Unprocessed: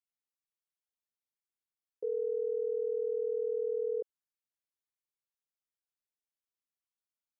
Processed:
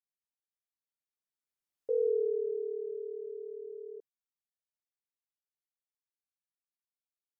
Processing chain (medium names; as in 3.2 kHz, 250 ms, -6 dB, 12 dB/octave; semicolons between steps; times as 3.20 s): Doppler pass-by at 2.03 s, 25 m/s, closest 6.8 m; trim +5 dB